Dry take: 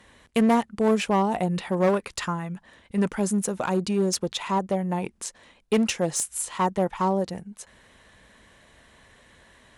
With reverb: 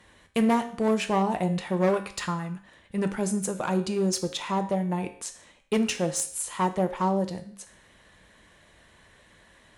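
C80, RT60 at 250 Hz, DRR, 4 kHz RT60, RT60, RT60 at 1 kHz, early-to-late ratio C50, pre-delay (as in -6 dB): 16.0 dB, 0.55 s, 7.0 dB, 0.55 s, 0.55 s, 0.55 s, 12.5 dB, 4 ms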